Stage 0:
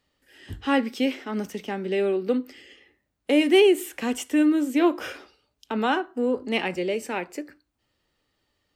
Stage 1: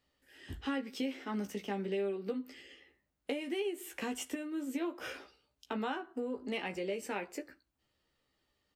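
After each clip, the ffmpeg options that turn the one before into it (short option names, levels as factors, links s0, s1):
-filter_complex "[0:a]acompressor=threshold=0.0447:ratio=16,asplit=2[s0][s1];[s1]adelay=15,volume=0.531[s2];[s0][s2]amix=inputs=2:normalize=0,volume=0.473"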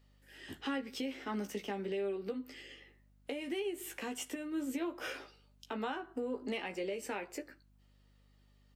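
-af "highpass=210,aeval=exprs='val(0)+0.000398*(sin(2*PI*50*n/s)+sin(2*PI*2*50*n/s)/2+sin(2*PI*3*50*n/s)/3+sin(2*PI*4*50*n/s)/4+sin(2*PI*5*50*n/s)/5)':c=same,alimiter=level_in=2.37:limit=0.0631:level=0:latency=1:release=307,volume=0.422,volume=1.41"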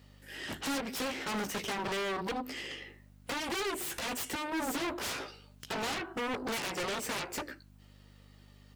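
-af "aeval=exprs='0.0376*(cos(1*acos(clip(val(0)/0.0376,-1,1)))-cos(1*PI/2))+0.0188*(cos(7*acos(clip(val(0)/0.0376,-1,1)))-cos(7*PI/2))+0.0075*(cos(8*acos(clip(val(0)/0.0376,-1,1)))-cos(8*PI/2))':c=same,highpass=58,asoftclip=type=hard:threshold=0.02,volume=1.5"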